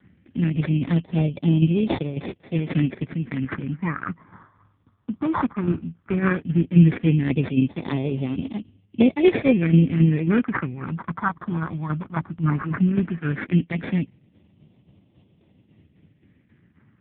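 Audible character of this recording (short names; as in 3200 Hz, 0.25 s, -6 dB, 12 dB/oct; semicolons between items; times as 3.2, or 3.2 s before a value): tremolo saw down 3.7 Hz, depth 60%; aliases and images of a low sample rate 2900 Hz, jitter 0%; phasing stages 4, 0.15 Hz, lowest notch 470–1400 Hz; AMR-NB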